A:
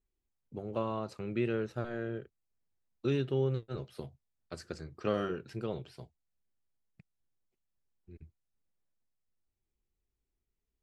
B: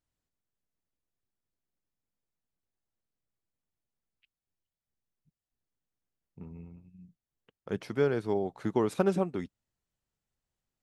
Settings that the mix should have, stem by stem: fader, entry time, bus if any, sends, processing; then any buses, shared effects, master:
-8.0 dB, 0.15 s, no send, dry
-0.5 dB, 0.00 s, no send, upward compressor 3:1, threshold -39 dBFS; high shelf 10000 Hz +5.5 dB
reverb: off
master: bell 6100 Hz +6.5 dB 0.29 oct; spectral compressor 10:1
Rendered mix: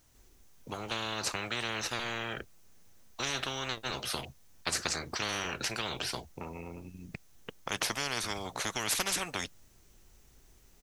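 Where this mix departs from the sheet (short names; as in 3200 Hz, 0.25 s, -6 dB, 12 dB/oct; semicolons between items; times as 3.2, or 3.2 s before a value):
stem A -8.0 dB -> +3.0 dB; stem B: missing upward compressor 3:1, threshold -39 dBFS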